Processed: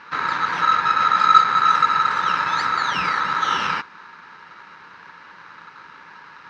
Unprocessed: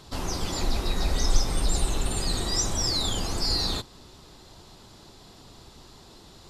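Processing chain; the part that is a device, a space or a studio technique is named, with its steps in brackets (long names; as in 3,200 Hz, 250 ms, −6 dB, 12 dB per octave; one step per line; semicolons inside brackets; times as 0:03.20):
ring modulator pedal into a guitar cabinet (ring modulator with a square carrier 1,300 Hz; loudspeaker in its box 94–3,900 Hz, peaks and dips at 170 Hz +8 dB, 650 Hz −7 dB, 930 Hz +9 dB, 1,700 Hz +8 dB, 3,400 Hz −7 dB)
level +4 dB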